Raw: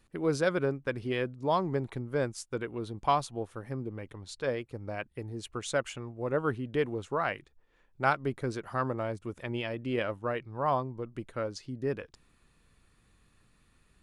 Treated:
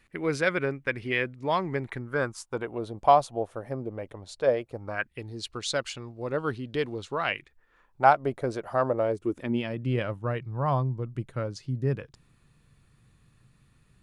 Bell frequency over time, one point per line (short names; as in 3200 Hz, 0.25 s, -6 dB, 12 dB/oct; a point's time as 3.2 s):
bell +12.5 dB 0.87 oct
1.83 s 2100 Hz
2.8 s 630 Hz
4.73 s 630 Hz
5.31 s 4400 Hz
7.03 s 4400 Hz
8.19 s 630 Hz
8.88 s 630 Hz
9.89 s 130 Hz